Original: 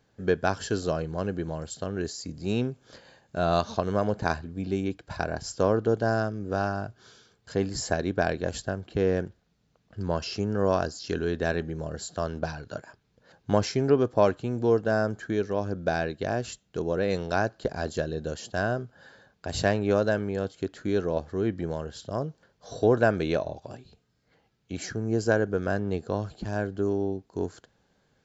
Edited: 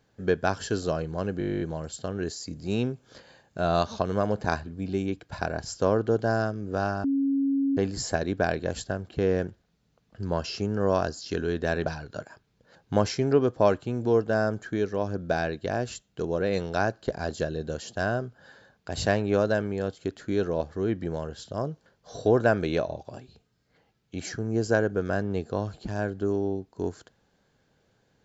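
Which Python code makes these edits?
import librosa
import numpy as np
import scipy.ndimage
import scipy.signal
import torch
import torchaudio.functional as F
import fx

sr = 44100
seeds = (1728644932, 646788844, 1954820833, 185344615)

y = fx.edit(x, sr, fx.stutter(start_s=1.39, slice_s=0.02, count=12),
    fx.bleep(start_s=6.82, length_s=0.73, hz=275.0, db=-21.5),
    fx.cut(start_s=11.64, length_s=0.79), tone=tone)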